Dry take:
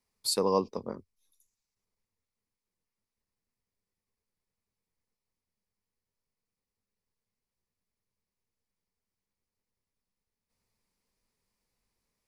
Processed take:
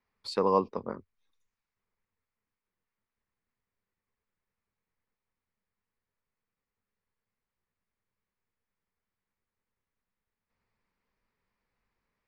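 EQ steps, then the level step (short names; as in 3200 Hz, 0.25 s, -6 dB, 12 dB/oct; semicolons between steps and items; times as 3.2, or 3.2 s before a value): LPF 2900 Hz 12 dB/oct; bell 1500 Hz +7 dB 1.3 oct; 0.0 dB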